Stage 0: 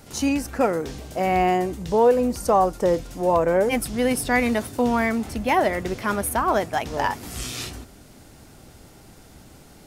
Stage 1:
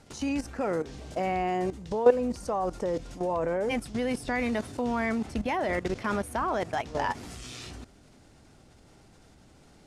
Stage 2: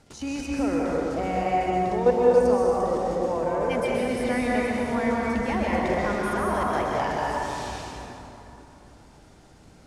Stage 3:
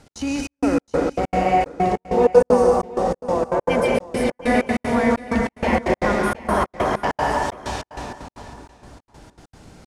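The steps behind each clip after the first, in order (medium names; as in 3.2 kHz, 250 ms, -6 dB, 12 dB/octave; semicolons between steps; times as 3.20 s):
Bessel low-pass 7.5 kHz, order 4; level held to a coarse grid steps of 14 dB
plate-style reverb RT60 3.2 s, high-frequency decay 0.55×, pre-delay 115 ms, DRR -4.5 dB; trim -1.5 dB
trance gate "x.xxxx..xx..xx." 192 bpm -60 dB; delay 720 ms -18 dB; trim +6.5 dB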